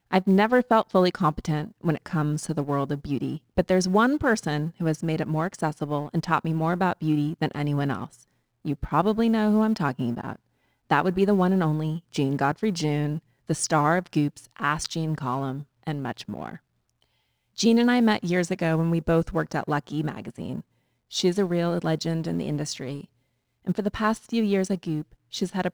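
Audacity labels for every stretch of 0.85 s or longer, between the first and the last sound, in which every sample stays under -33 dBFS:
16.560000	17.580000	silence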